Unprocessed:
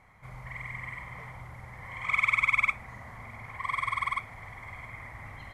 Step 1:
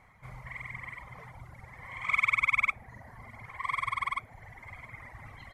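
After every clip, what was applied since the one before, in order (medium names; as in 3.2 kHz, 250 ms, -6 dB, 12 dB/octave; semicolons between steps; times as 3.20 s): reverb removal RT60 1.5 s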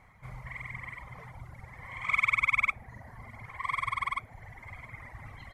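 bass shelf 170 Hz +3.5 dB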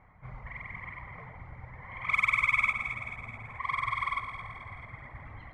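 level-controlled noise filter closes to 1.8 kHz, open at -22.5 dBFS; echo whose repeats swap between lows and highs 108 ms, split 1.5 kHz, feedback 74%, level -6 dB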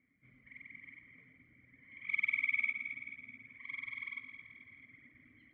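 vowel filter i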